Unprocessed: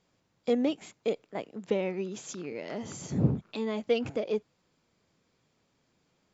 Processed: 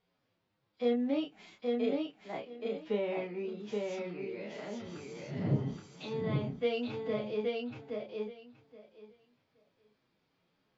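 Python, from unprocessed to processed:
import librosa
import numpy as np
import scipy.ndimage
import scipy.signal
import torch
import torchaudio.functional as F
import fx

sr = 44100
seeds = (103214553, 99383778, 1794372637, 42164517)

y = scipy.signal.sosfilt(scipy.signal.butter(4, 4700.0, 'lowpass', fs=sr, output='sos'), x)
y = fx.low_shelf(y, sr, hz=240.0, db=-3.5)
y = fx.stretch_vocoder(y, sr, factor=1.7)
y = fx.doubler(y, sr, ms=29.0, db=-3.5)
y = fx.echo_feedback(y, sr, ms=824, feedback_pct=16, wet_db=-3.0)
y = F.gain(torch.from_numpy(y), -5.5).numpy()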